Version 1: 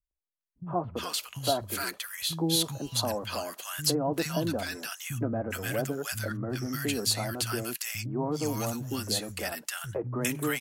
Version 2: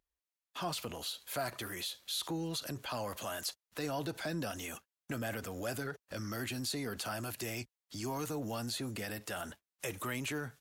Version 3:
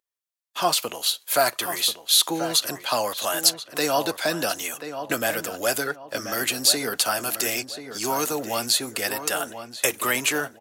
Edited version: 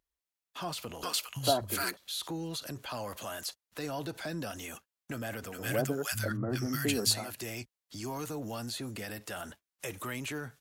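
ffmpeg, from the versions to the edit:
-filter_complex "[0:a]asplit=2[s0][s1];[1:a]asplit=3[s2][s3][s4];[s2]atrim=end=1.032[s5];[s0]atrim=start=1.028:end=1.972[s6];[s3]atrim=start=1.968:end=5.72[s7];[s1]atrim=start=5.48:end=7.33[s8];[s4]atrim=start=7.09[s9];[s5][s6]acrossfade=d=0.004:c1=hsin:c2=hsin[s10];[s10][s7]acrossfade=d=0.004:c1=hsin:c2=hsin[s11];[s11][s8]acrossfade=d=0.24:c1=tri:c2=tri[s12];[s12][s9]acrossfade=d=0.24:c1=tri:c2=tri"

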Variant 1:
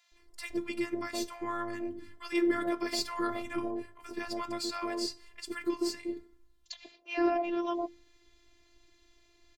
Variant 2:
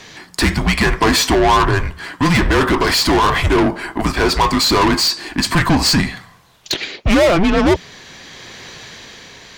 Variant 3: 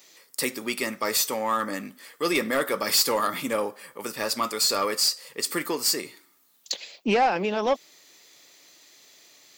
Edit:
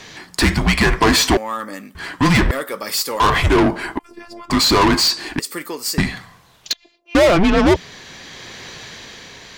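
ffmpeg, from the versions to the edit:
-filter_complex "[2:a]asplit=3[s0][s1][s2];[0:a]asplit=2[s3][s4];[1:a]asplit=6[s5][s6][s7][s8][s9][s10];[s5]atrim=end=1.372[s11];[s0]atrim=start=1.368:end=1.952[s12];[s6]atrim=start=1.948:end=2.512[s13];[s1]atrim=start=2.508:end=3.202[s14];[s7]atrim=start=3.198:end=3.992[s15];[s3]atrim=start=3.988:end=4.502[s16];[s8]atrim=start=4.498:end=5.392[s17];[s2]atrim=start=5.388:end=5.982[s18];[s9]atrim=start=5.978:end=6.732[s19];[s4]atrim=start=6.728:end=7.152[s20];[s10]atrim=start=7.148[s21];[s11][s12]acrossfade=d=0.004:c1=hsin:c2=hsin[s22];[s22][s13]acrossfade=d=0.004:c1=hsin:c2=hsin[s23];[s23][s14]acrossfade=d=0.004:c1=hsin:c2=hsin[s24];[s24][s15]acrossfade=d=0.004:c1=hsin:c2=hsin[s25];[s25][s16]acrossfade=d=0.004:c1=hsin:c2=hsin[s26];[s26][s17]acrossfade=d=0.004:c1=hsin:c2=hsin[s27];[s27][s18]acrossfade=d=0.004:c1=hsin:c2=hsin[s28];[s28][s19]acrossfade=d=0.004:c1=hsin:c2=hsin[s29];[s29][s20]acrossfade=d=0.004:c1=hsin:c2=hsin[s30];[s30][s21]acrossfade=d=0.004:c1=hsin:c2=hsin"

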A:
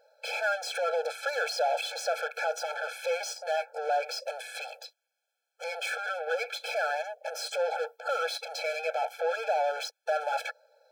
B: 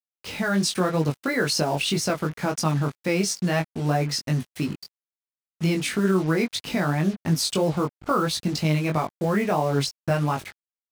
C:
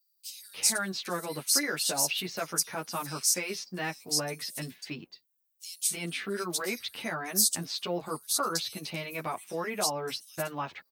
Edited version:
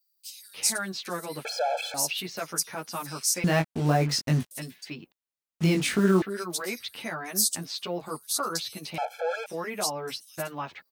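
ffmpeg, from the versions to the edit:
-filter_complex "[0:a]asplit=2[s0][s1];[1:a]asplit=2[s2][s3];[2:a]asplit=5[s4][s5][s6][s7][s8];[s4]atrim=end=1.452[s9];[s0]atrim=start=1.448:end=1.942[s10];[s5]atrim=start=1.938:end=3.442[s11];[s2]atrim=start=3.438:end=4.512[s12];[s6]atrim=start=4.508:end=5.122[s13];[s3]atrim=start=5.118:end=6.222[s14];[s7]atrim=start=6.218:end=8.982[s15];[s1]atrim=start=8.978:end=9.462[s16];[s8]atrim=start=9.458[s17];[s9][s10]acrossfade=d=0.004:c1=hsin:c2=hsin[s18];[s18][s11]acrossfade=d=0.004:c1=hsin:c2=hsin[s19];[s19][s12]acrossfade=d=0.004:c1=hsin:c2=hsin[s20];[s20][s13]acrossfade=d=0.004:c1=hsin:c2=hsin[s21];[s21][s14]acrossfade=d=0.004:c1=hsin:c2=hsin[s22];[s22][s15]acrossfade=d=0.004:c1=hsin:c2=hsin[s23];[s23][s16]acrossfade=d=0.004:c1=hsin:c2=hsin[s24];[s24][s17]acrossfade=d=0.004:c1=hsin:c2=hsin"

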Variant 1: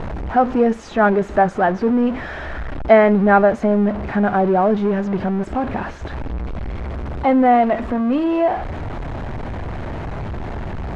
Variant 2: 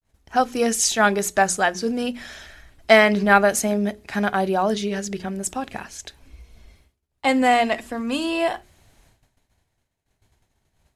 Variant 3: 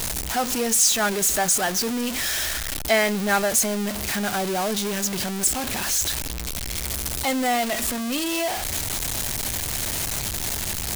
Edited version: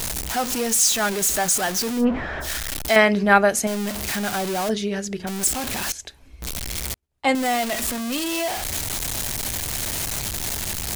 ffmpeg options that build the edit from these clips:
-filter_complex "[1:a]asplit=4[s0][s1][s2][s3];[2:a]asplit=6[s4][s5][s6][s7][s8][s9];[s4]atrim=end=2.06[s10];[0:a]atrim=start=1.96:end=2.5[s11];[s5]atrim=start=2.4:end=2.962[s12];[s0]atrim=start=2.958:end=3.672[s13];[s6]atrim=start=3.668:end=4.692[s14];[s1]atrim=start=4.688:end=5.272[s15];[s7]atrim=start=5.268:end=5.922[s16];[s2]atrim=start=5.918:end=6.422[s17];[s8]atrim=start=6.418:end=6.942[s18];[s3]atrim=start=6.938:end=7.352[s19];[s9]atrim=start=7.348[s20];[s10][s11]acrossfade=d=0.1:c1=tri:c2=tri[s21];[s21][s12]acrossfade=d=0.1:c1=tri:c2=tri[s22];[s22][s13]acrossfade=d=0.004:c1=hsin:c2=hsin[s23];[s23][s14]acrossfade=d=0.004:c1=hsin:c2=hsin[s24];[s24][s15]acrossfade=d=0.004:c1=hsin:c2=hsin[s25];[s25][s16]acrossfade=d=0.004:c1=hsin:c2=hsin[s26];[s26][s17]acrossfade=d=0.004:c1=hsin:c2=hsin[s27];[s27][s18]acrossfade=d=0.004:c1=hsin:c2=hsin[s28];[s28][s19]acrossfade=d=0.004:c1=hsin:c2=hsin[s29];[s29][s20]acrossfade=d=0.004:c1=hsin:c2=hsin"

